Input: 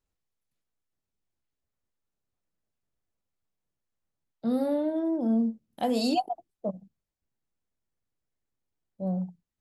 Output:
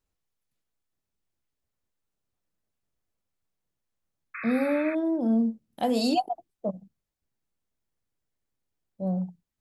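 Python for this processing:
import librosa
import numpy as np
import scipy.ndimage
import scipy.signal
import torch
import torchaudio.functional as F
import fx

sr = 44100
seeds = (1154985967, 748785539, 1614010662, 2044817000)

y = fx.spec_paint(x, sr, seeds[0], shape='noise', start_s=4.34, length_s=0.61, low_hz=1100.0, high_hz=2600.0, level_db=-39.0)
y = y * librosa.db_to_amplitude(1.5)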